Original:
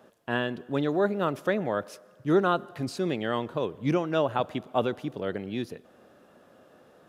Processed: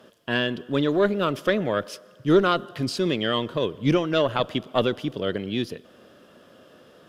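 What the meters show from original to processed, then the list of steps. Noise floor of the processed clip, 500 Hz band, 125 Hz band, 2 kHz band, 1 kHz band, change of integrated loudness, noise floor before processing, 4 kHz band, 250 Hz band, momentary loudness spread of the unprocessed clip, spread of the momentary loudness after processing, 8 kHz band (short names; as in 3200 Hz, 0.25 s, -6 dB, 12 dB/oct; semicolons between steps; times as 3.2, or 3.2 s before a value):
-53 dBFS, +4.0 dB, +4.5 dB, +5.0 dB, +2.0 dB, +4.5 dB, -58 dBFS, +11.0 dB, +4.5 dB, 9 LU, 8 LU, +6.0 dB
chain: added harmonics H 2 -14 dB, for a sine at -11.5 dBFS; thirty-one-band EQ 800 Hz -8 dB, 3150 Hz +9 dB, 5000 Hz +6 dB; gain +5 dB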